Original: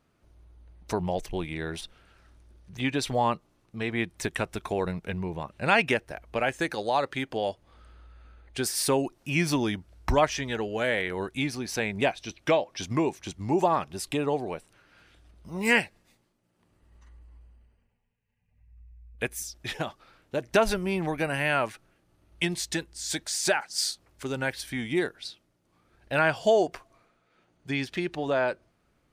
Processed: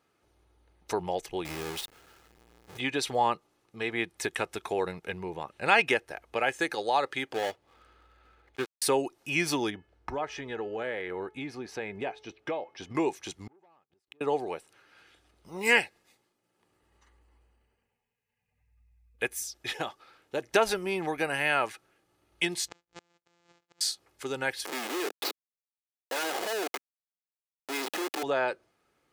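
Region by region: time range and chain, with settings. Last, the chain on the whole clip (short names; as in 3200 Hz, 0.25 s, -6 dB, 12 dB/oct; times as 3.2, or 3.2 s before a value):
1.45–2.78 half-waves squared off + compressor 3:1, threshold -31 dBFS
7.34–8.82 switching dead time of 0.26 ms + high shelf 7100 Hz -9.5 dB
9.7–12.95 LPF 1200 Hz 6 dB/oct + compressor 2.5:1, threshold -29 dBFS + de-hum 430.1 Hz, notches 7
13.47–14.21 LPF 1100 Hz 6 dB/oct + sample leveller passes 2 + flipped gate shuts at -28 dBFS, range -41 dB
22.68–23.81 sample sorter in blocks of 256 samples + Chebyshev low-pass 7400 Hz, order 4 + flipped gate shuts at -29 dBFS, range -36 dB
24.65–28.23 Schmitt trigger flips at -38 dBFS + HPF 270 Hz 24 dB/oct
whole clip: HPF 350 Hz 6 dB/oct; comb 2.4 ms, depth 32%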